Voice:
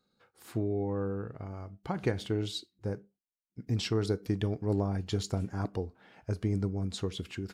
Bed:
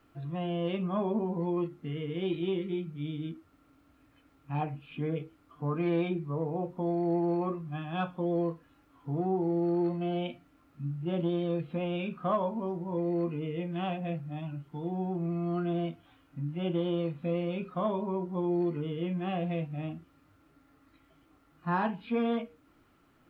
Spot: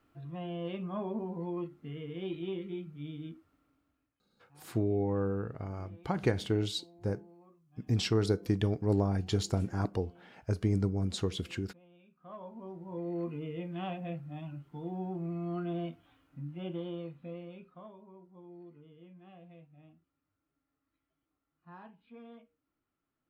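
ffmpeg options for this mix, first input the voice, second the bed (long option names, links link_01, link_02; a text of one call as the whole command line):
ffmpeg -i stem1.wav -i stem2.wav -filter_complex "[0:a]adelay=4200,volume=1.5dB[link_01];[1:a]volume=18dB,afade=type=out:start_time=3.37:duration=0.81:silence=0.0749894,afade=type=in:start_time=12.16:duration=1.17:silence=0.0630957,afade=type=out:start_time=16.03:duration=1.9:silence=0.133352[link_02];[link_01][link_02]amix=inputs=2:normalize=0" out.wav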